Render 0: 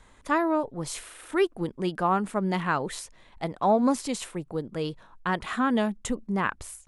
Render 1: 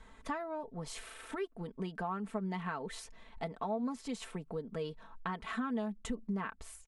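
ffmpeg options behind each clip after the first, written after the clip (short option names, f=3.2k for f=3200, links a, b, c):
-af "acompressor=threshold=-35dB:ratio=5,highshelf=f=6.3k:g=-10.5,aecho=1:1:4.5:0.67,volume=-2.5dB"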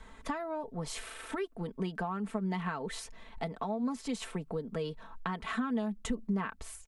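-filter_complex "[0:a]acrossover=split=240|3000[a][b][c];[b]acompressor=threshold=-37dB:ratio=6[d];[a][d][c]amix=inputs=3:normalize=0,volume=4.5dB"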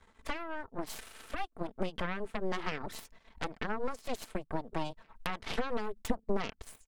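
-af "aeval=exprs='0.141*(cos(1*acos(clip(val(0)/0.141,-1,1)))-cos(1*PI/2))+0.0316*(cos(4*acos(clip(val(0)/0.141,-1,1)))-cos(4*PI/2))+0.0282*(cos(7*acos(clip(val(0)/0.141,-1,1)))-cos(7*PI/2))+0.0316*(cos(8*acos(clip(val(0)/0.141,-1,1)))-cos(8*PI/2))':c=same,volume=-3dB"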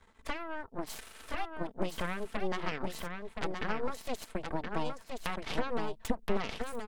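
-af "aecho=1:1:1022:0.562"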